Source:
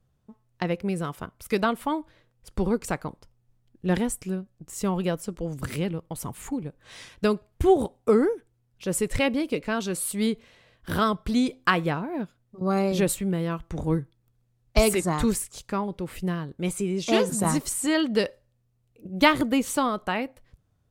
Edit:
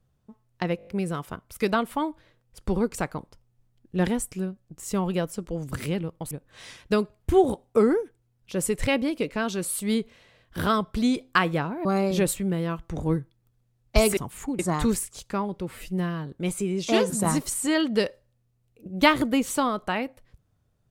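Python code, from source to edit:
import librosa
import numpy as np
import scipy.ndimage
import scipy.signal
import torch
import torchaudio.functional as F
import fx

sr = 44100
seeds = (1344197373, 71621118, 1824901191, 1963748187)

y = fx.edit(x, sr, fx.stutter(start_s=0.77, slice_s=0.02, count=6),
    fx.move(start_s=6.21, length_s=0.42, to_s=14.98),
    fx.cut(start_s=12.17, length_s=0.49),
    fx.stretch_span(start_s=16.07, length_s=0.39, factor=1.5), tone=tone)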